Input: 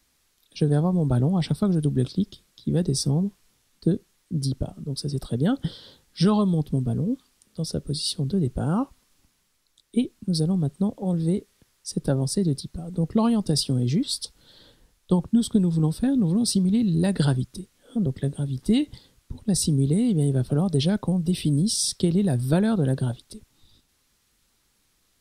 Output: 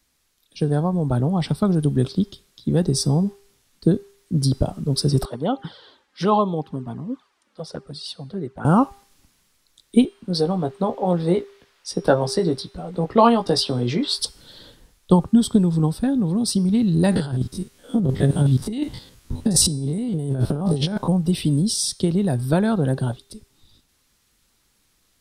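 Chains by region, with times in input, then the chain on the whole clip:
5.25–8.65 s: band-pass filter 1.1 kHz, Q 0.9 + touch-sensitive flanger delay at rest 4.3 ms, full sweep at -29 dBFS
10.05–14.19 s: three-band isolator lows -13 dB, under 380 Hz, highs -15 dB, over 4.4 kHz + doubling 17 ms -6.5 dB
17.11–21.09 s: spectrogram pixelated in time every 50 ms + compressor with a negative ratio -26 dBFS, ratio -0.5
whole clip: de-hum 399.9 Hz, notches 27; gain riding 2 s; dynamic bell 970 Hz, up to +6 dB, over -43 dBFS, Q 0.8; trim +3.5 dB

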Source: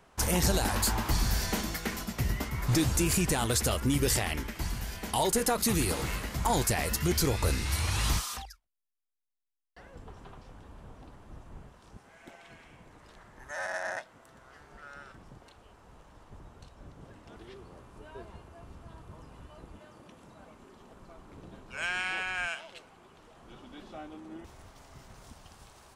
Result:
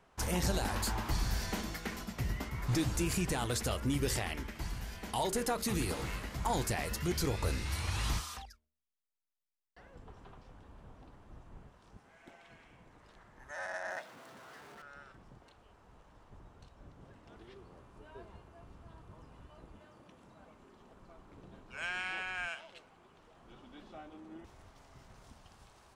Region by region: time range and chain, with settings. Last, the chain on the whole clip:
13.90–14.82 s: jump at every zero crossing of -45 dBFS + high-pass 150 Hz
whole clip: treble shelf 7.1 kHz -7 dB; de-hum 76.55 Hz, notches 8; trim -5 dB

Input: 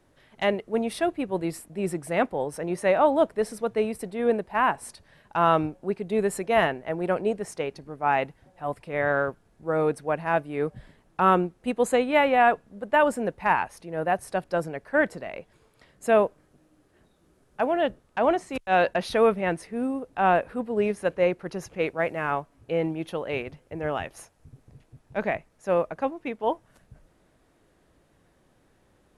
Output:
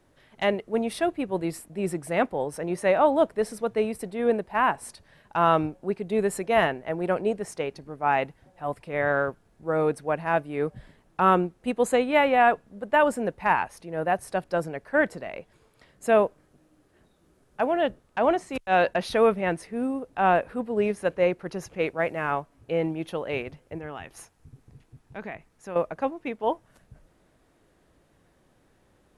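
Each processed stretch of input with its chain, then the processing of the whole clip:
23.78–25.76 s: peaking EQ 590 Hz -7 dB 0.38 oct + compression 2:1, threshold -38 dBFS
whole clip: none

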